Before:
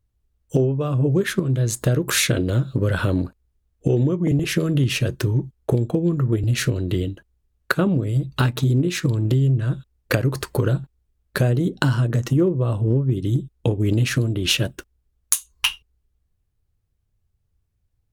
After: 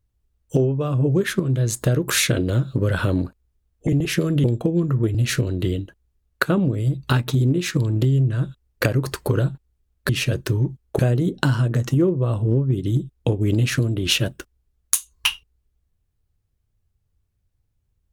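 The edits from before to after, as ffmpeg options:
-filter_complex "[0:a]asplit=5[a][b][c][d][e];[a]atrim=end=3.872[f];[b]atrim=start=4.258:end=4.832[g];[c]atrim=start=5.728:end=11.382[h];[d]atrim=start=4.828:end=5.732[i];[e]atrim=start=11.378[j];[f][g]acrossfade=d=0.004:c1=hsin:c2=hsin[k];[k][h]acrossfade=d=0.004:c1=hsin:c2=hsin[l];[l][i]acrossfade=d=0.004:c1=hsin:c2=hsin[m];[m][j]acrossfade=d=0.004:c1=hsin:c2=hsin"

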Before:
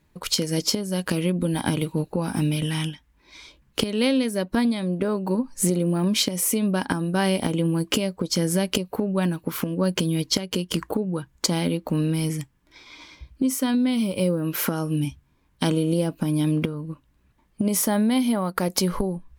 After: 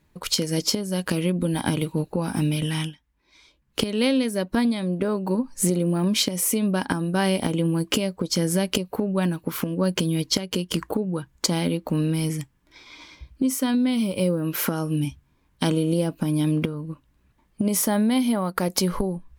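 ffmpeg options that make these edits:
-filter_complex "[0:a]asplit=3[a][b][c];[a]atrim=end=2.95,asetpts=PTS-STARTPTS,afade=t=out:st=2.81:d=0.14:silence=0.334965[d];[b]atrim=start=2.95:end=3.67,asetpts=PTS-STARTPTS,volume=-9.5dB[e];[c]atrim=start=3.67,asetpts=PTS-STARTPTS,afade=t=in:d=0.14:silence=0.334965[f];[d][e][f]concat=n=3:v=0:a=1"

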